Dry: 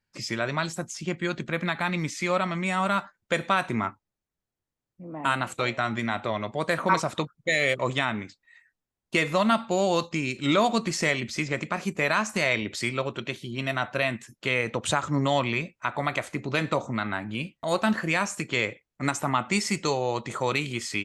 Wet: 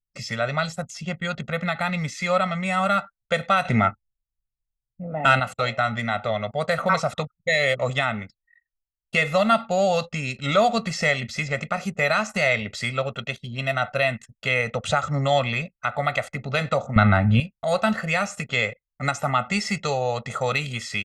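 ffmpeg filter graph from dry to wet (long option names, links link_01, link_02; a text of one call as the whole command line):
ffmpeg -i in.wav -filter_complex "[0:a]asettb=1/sr,asplit=3[link_01][link_02][link_03];[link_01]atrim=end=3.654[link_04];[link_02]atrim=start=3.65:end=5.4,asetpts=PTS-STARTPTS,afade=type=in:duration=0.004:curve=qsin,afade=type=out:start_time=1.746:duration=0.004:curve=qsin,lowpass=5900,equalizer=frequency=1100:width=4.4:gain=-11,acontrast=85[link_05];[link_03]atrim=start=5.396[link_06];[link_04][link_05]acrossfade=duration=0.004:curve1=hsin:curve2=qsin[link_07];[link_07][link_06]acrossfade=duration=0.004:curve1=qsin:curve2=hsin,asettb=1/sr,asplit=3[link_08][link_09][link_10];[link_08]atrim=end=16.964[link_11];[link_09]atrim=start=16.96:end=17.4,asetpts=PTS-STARTPTS,afade=type=in:duration=0.004:curve=qsin,afade=type=out:start_time=0.436:duration=0.004:curve=qsin,acontrast=90,aemphasis=mode=reproduction:type=bsi[link_12];[link_10]atrim=start=17.396[link_13];[link_11][link_12]acrossfade=duration=0.004:curve1=hsin:curve2=qsin[link_14];[link_14][link_13]acrossfade=duration=0.004:curve1=qsin:curve2=hsin,anlmdn=0.0631,aecho=1:1:1.5:0.98,acrossover=split=6100[link_15][link_16];[link_16]acompressor=threshold=-44dB:ratio=4:attack=1:release=60[link_17];[link_15][link_17]amix=inputs=2:normalize=0" out.wav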